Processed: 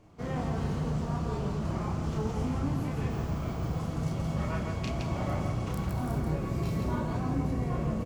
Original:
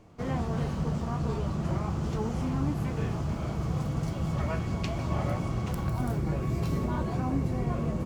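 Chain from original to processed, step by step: on a send: loudspeakers at several distances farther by 11 m -2 dB, 57 m -3 dB; 3.10–3.79 s: on the sum: careless resampling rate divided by 2×, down none, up hold; trim -4 dB

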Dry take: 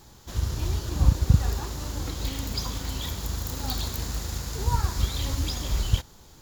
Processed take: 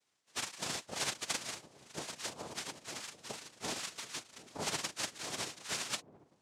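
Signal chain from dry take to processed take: formants flattened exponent 0.1; spectral noise reduction 26 dB; dynamic bell 2.1 kHz, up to +5 dB, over -44 dBFS, Q 3; compression 4:1, threshold -38 dBFS, peak gain reduction 22 dB; in parallel at -6.5 dB: word length cut 8-bit, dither none; on the sum: noise-vocoded speech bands 2; on a send: feedback echo behind a low-pass 738 ms, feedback 59%, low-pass 540 Hz, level -14.5 dB

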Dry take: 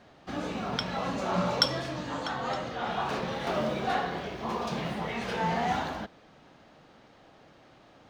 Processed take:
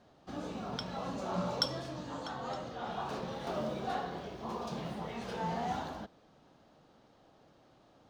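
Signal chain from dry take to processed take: peaking EQ 2.1 kHz -7.5 dB 1.1 oct; trim -6 dB

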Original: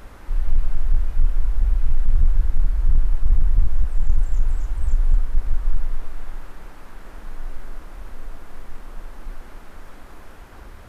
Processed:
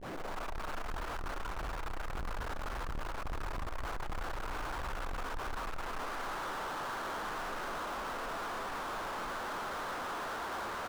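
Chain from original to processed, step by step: tape start-up on the opening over 0.53 s; tilt EQ +4.5 dB/octave; reverse; upward compressor, threshold -42 dBFS; reverse; low-pass 1.4 kHz 24 dB/octave; bass shelf 180 Hz -10.5 dB; power-law waveshaper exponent 0.35; feedback delay 274 ms, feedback 55%, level -16 dB; trim +2 dB

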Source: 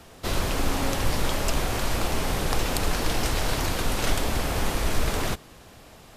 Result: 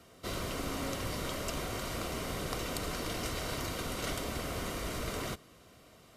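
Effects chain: comb of notches 840 Hz; trim -8 dB

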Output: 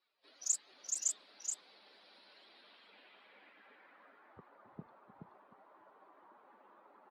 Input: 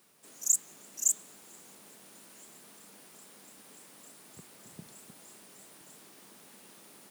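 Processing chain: expander on every frequency bin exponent 2; low-pass sweep 4.6 kHz -> 1.1 kHz, 2.27–4.43 s; delay 425 ms -4.5 dB

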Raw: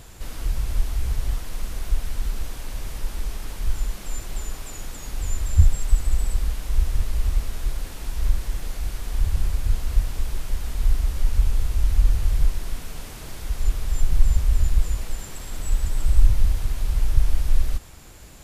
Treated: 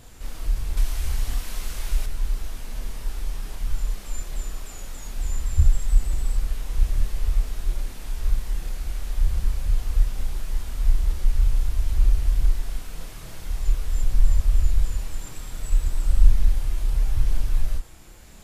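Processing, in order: chorus voices 6, 0.12 Hz, delay 30 ms, depth 4.7 ms; 0.77–2.06 s: tape noise reduction on one side only encoder only

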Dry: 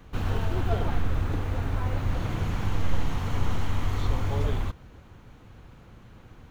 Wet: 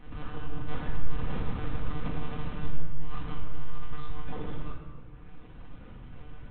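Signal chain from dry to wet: 0.67–2.82 s: square wave that keeps the level; reverb removal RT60 1.3 s; dynamic bell 1.2 kHz, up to +6 dB, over -55 dBFS, Q 4.3; compression 6:1, threshold -33 dBFS, peak gain reduction 16.5 dB; peak limiter -32.5 dBFS, peak gain reduction 8.5 dB; chorus voices 4, 1 Hz, delay 16 ms, depth 4.4 ms; monotone LPC vocoder at 8 kHz 150 Hz; simulated room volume 1400 m³, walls mixed, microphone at 1.9 m; trim +3.5 dB

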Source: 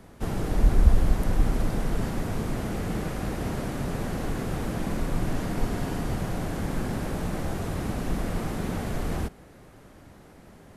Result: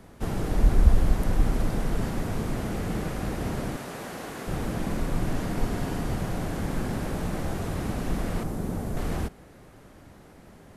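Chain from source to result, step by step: 3.76–4.48 s: high-pass 550 Hz 6 dB/octave; 8.43–8.97 s: peaking EQ 2.7 kHz -10 dB 2.5 oct

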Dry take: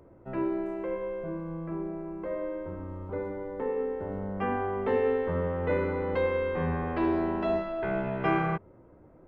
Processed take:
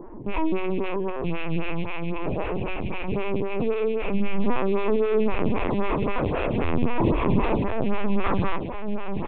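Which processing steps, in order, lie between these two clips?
rattle on loud lows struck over -41 dBFS, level -23 dBFS; peaking EQ 780 Hz -5.5 dB 0.57 oct; comb 5 ms, depth 66%; in parallel at +1 dB: compression 6:1, threshold -41 dBFS, peak gain reduction 18.5 dB; on the sum: saturation -28 dBFS, distortion -9 dB; small resonant body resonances 230/920 Hz, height 14 dB, ringing for 30 ms; on a send: echo that smears into a reverb 1067 ms, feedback 42%, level -6 dB; on the sum: LPC vocoder at 8 kHz pitch kept; lamp-driven phase shifter 3.8 Hz; trim +5.5 dB

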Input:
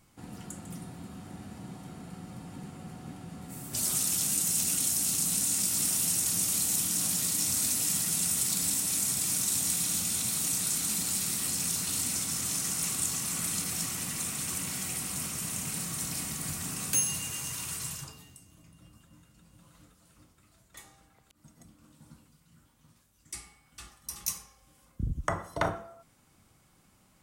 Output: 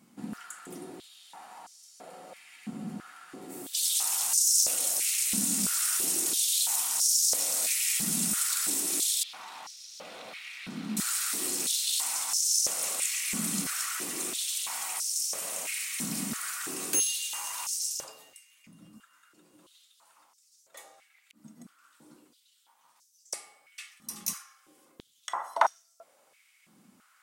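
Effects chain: 9.23–10.97 s: distance through air 350 m; step-sequenced high-pass 3 Hz 220–5600 Hz

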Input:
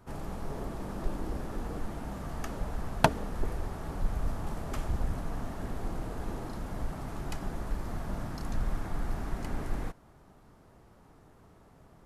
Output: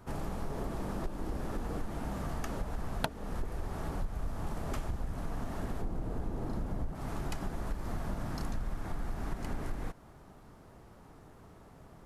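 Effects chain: 5.81–6.95 s: tilt shelf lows +5 dB, about 870 Hz; compression 6:1, threshold -34 dBFS, peak gain reduction 17.5 dB; trim +3 dB

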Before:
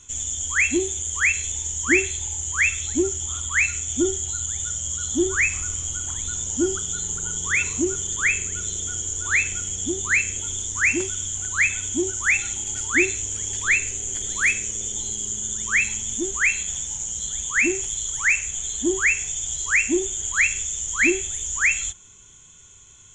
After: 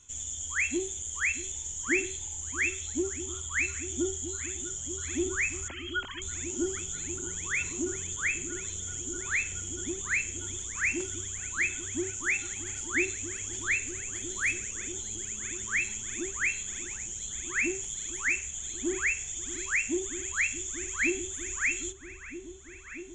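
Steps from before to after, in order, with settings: 5.68–6.22 s: formants replaced by sine waves; delay with an opening low-pass 636 ms, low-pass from 200 Hz, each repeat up 1 oct, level -6 dB; trim -9 dB

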